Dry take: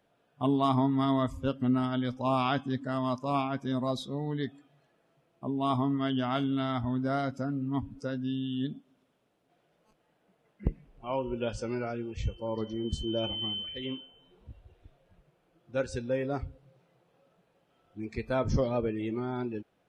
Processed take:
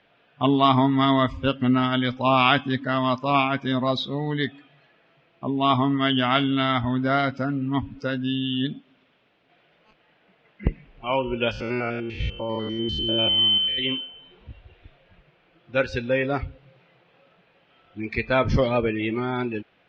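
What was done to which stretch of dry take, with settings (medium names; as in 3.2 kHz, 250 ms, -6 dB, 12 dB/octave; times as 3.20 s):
11.51–13.79 s: spectrogram pixelated in time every 100 ms
whole clip: low-pass 4.7 kHz 24 dB/octave; peaking EQ 2.4 kHz +11.5 dB 1.7 oct; trim +6 dB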